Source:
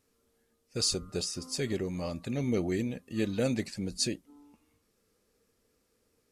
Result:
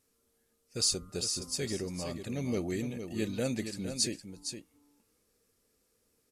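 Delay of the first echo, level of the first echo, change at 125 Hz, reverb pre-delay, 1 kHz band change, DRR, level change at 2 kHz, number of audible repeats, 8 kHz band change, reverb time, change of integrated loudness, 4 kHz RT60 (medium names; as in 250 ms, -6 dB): 461 ms, -8.5 dB, -3.0 dB, no reverb, -2.5 dB, no reverb, -2.0 dB, 1, +2.5 dB, no reverb, -1.5 dB, no reverb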